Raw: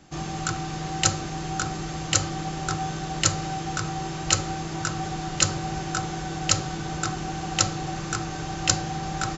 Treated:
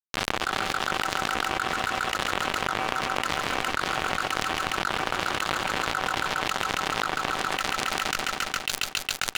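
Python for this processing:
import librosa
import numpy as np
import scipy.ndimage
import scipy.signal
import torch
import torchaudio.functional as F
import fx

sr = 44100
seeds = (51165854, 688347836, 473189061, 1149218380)

p1 = fx.octave_divider(x, sr, octaves=1, level_db=4.0)
p2 = scipy.signal.sosfilt(scipy.signal.butter(2, 200.0, 'highpass', fs=sr, output='sos'), p1)
p3 = fx.high_shelf(p2, sr, hz=3900.0, db=-6.5)
p4 = fx.notch(p3, sr, hz=5400.0, q=6.9)
p5 = fx.rider(p4, sr, range_db=3, speed_s=0.5)
p6 = p4 + (p5 * librosa.db_to_amplitude(0.5))
p7 = fx.cheby_harmonics(p6, sr, harmonics=(3, 6, 8), levels_db=(-32, -36, -22), full_scale_db=0.0)
p8 = fx.filter_sweep_bandpass(p7, sr, from_hz=1200.0, to_hz=3200.0, start_s=7.25, end_s=8.29, q=1.6)
p9 = fx.fuzz(p8, sr, gain_db=19.0, gate_db=-28.0)
p10 = p9 + fx.echo_heads(p9, sr, ms=137, heads='all three', feedback_pct=55, wet_db=-19, dry=0)
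p11 = fx.env_flatten(p10, sr, amount_pct=100)
y = p11 * librosa.db_to_amplitude(-7.0)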